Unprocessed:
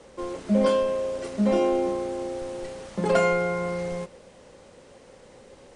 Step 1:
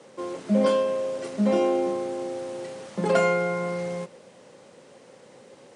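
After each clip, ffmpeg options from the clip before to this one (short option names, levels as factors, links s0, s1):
-af "highpass=f=120:w=0.5412,highpass=f=120:w=1.3066"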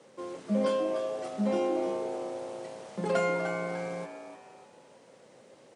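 -filter_complex "[0:a]asplit=5[s0][s1][s2][s3][s4];[s1]adelay=299,afreqshift=110,volume=0.335[s5];[s2]adelay=598,afreqshift=220,volume=0.127[s6];[s3]adelay=897,afreqshift=330,volume=0.0484[s7];[s4]adelay=1196,afreqshift=440,volume=0.0184[s8];[s0][s5][s6][s7][s8]amix=inputs=5:normalize=0,volume=0.473"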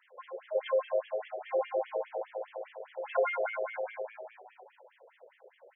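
-af "asuperstop=centerf=1200:order=4:qfactor=6.8,afftfilt=real='re*between(b*sr/1024,500*pow(2500/500,0.5+0.5*sin(2*PI*4.9*pts/sr))/1.41,500*pow(2500/500,0.5+0.5*sin(2*PI*4.9*pts/sr))*1.41)':imag='im*between(b*sr/1024,500*pow(2500/500,0.5+0.5*sin(2*PI*4.9*pts/sr))/1.41,500*pow(2500/500,0.5+0.5*sin(2*PI*4.9*pts/sr))*1.41)':win_size=1024:overlap=0.75,volume=1.58"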